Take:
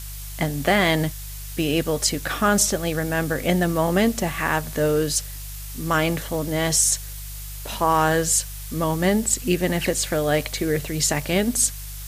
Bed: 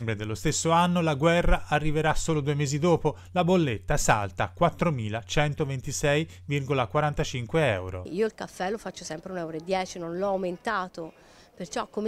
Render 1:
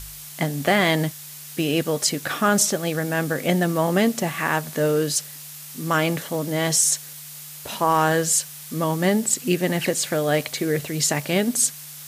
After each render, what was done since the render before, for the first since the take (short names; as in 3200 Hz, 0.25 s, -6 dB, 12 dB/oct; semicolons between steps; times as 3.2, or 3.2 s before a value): de-hum 50 Hz, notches 2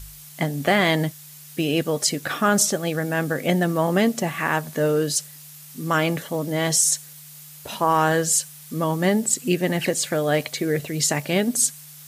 denoiser 6 dB, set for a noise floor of -39 dBFS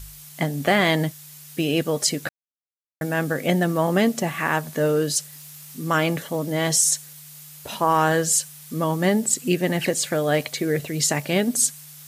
2.29–3.01 mute; 5.32–5.77 zero-crossing step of -53 dBFS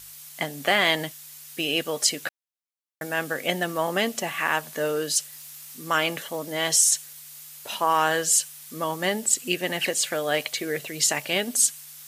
HPF 720 Hz 6 dB/oct; dynamic EQ 2900 Hz, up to +5 dB, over -44 dBFS, Q 3.6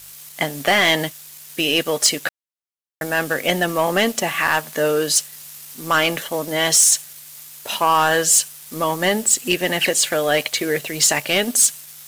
sample leveller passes 2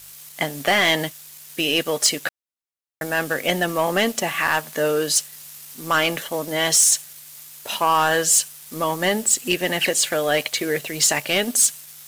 gain -2 dB